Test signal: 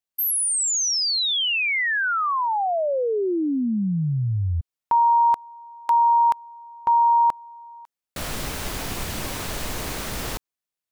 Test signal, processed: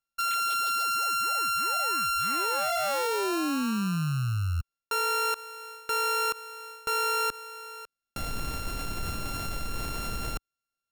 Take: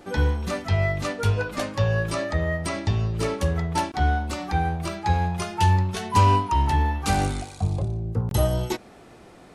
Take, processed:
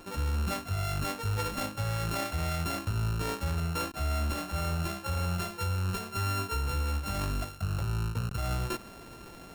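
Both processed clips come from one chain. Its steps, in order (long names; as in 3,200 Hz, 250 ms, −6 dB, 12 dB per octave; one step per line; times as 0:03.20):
samples sorted by size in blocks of 32 samples
low-shelf EQ 68 Hz +7.5 dB
reversed playback
downward compressor 10 to 1, threshold −26 dBFS
reversed playback
brickwall limiter −23 dBFS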